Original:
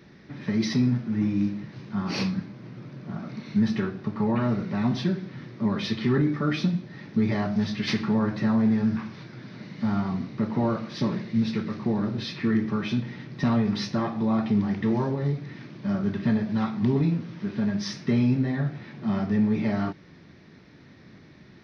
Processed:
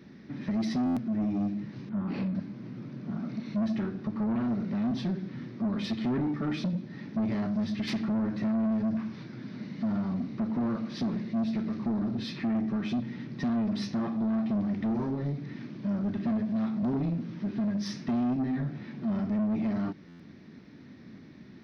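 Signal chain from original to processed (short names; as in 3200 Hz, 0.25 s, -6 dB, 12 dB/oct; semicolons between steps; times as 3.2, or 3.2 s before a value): bell 240 Hz +9.5 dB 0.85 oct; in parallel at -2 dB: compressor, threshold -25 dBFS, peak gain reduction 14 dB; on the sum: soft clip -16 dBFS, distortion -10 dB; 1.89–2.35 air absorption 400 m; stuck buffer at 0.85/20.08, samples 512, times 9; gain -9 dB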